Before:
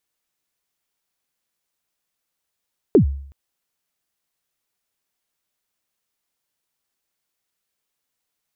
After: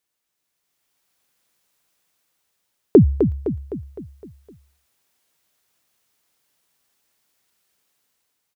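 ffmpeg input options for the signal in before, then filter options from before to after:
-f lavfi -i "aevalsrc='0.501*pow(10,-3*t/0.6)*sin(2*PI*(470*0.102/log(69/470)*(exp(log(69/470)*min(t,0.102)/0.102)-1)+69*max(t-0.102,0)))':duration=0.37:sample_rate=44100"
-af "highpass=47,dynaudnorm=framelen=310:gausssize=5:maxgain=9dB,aecho=1:1:256|512|768|1024|1280|1536:0.422|0.215|0.11|0.0559|0.0285|0.0145"

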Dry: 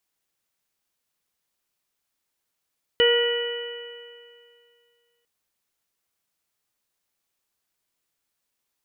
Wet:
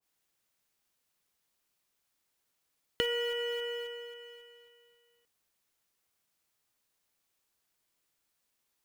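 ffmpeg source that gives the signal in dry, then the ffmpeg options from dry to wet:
-f lavfi -i "aevalsrc='0.158*pow(10,-3*t/2.29)*sin(2*PI*473.57*t)+0.0188*pow(10,-3*t/2.29)*sin(2*PI*950.53*t)+0.0355*pow(10,-3*t/2.29)*sin(2*PI*1434.24*t)+0.0708*pow(10,-3*t/2.29)*sin(2*PI*1927.98*t)+0.0168*pow(10,-3*t/2.29)*sin(2*PI*2434.92*t)+0.119*pow(10,-3*t/2.29)*sin(2*PI*2958.06*t)':duration=2.25:sample_rate=44100"
-filter_complex "[0:a]acrossover=split=550[link_01][link_02];[link_01]acrusher=bits=2:mode=log:mix=0:aa=0.000001[link_03];[link_03][link_02]amix=inputs=2:normalize=0,acompressor=threshold=-30dB:ratio=5,adynamicequalizer=threshold=0.00398:dfrequency=1500:dqfactor=0.7:tfrequency=1500:tqfactor=0.7:attack=5:release=100:ratio=0.375:range=2:mode=cutabove:tftype=highshelf"

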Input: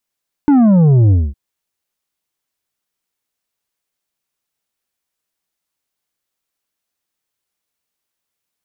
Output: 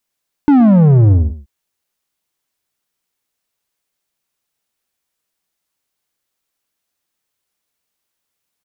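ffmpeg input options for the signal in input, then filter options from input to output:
-f lavfi -i "aevalsrc='0.422*clip((0.86-t)/0.23,0,1)*tanh(2.24*sin(2*PI*300*0.86/log(65/300)*(exp(log(65/300)*t/0.86)-1)))/tanh(2.24)':duration=0.86:sample_rate=44100"
-filter_complex "[0:a]asplit=2[link_01][link_02];[link_02]asoftclip=type=tanh:threshold=-19dB,volume=-8dB[link_03];[link_01][link_03]amix=inputs=2:normalize=0,aecho=1:1:121:0.168"

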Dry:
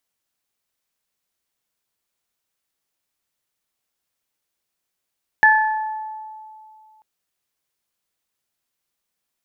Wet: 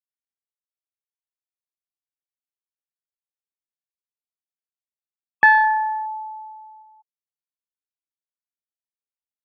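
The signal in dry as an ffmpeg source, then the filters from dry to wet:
-f lavfi -i "aevalsrc='0.224*pow(10,-3*t/2.48)*sin(2*PI*868*t)+0.398*pow(10,-3*t/0.85)*sin(2*PI*1736*t)':duration=1.59:sample_rate=44100"
-filter_complex "[0:a]afftfilt=real='re*gte(hypot(re,im),0.0224)':imag='im*gte(hypot(re,im),0.0224)':win_size=1024:overlap=0.75,asplit=2[link_01][link_02];[link_02]volume=17dB,asoftclip=hard,volume=-17dB,volume=-6dB[link_03];[link_01][link_03]amix=inputs=2:normalize=0,highpass=110,lowpass=2600"

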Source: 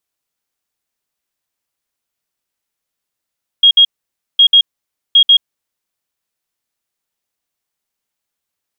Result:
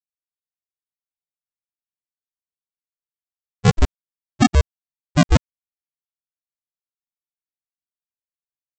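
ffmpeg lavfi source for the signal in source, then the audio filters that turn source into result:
-f lavfi -i "aevalsrc='0.668*sin(2*PI*3270*t)*clip(min(mod(mod(t,0.76),0.14),0.08-mod(mod(t,0.76),0.14))/0.005,0,1)*lt(mod(t,0.76),0.28)':duration=2.28:sample_rate=44100"
-af "agate=range=-33dB:threshold=-7dB:ratio=16:detection=peak,aresample=16000,acrusher=samples=42:mix=1:aa=0.000001:lfo=1:lforange=25.2:lforate=0.37,aresample=44100"

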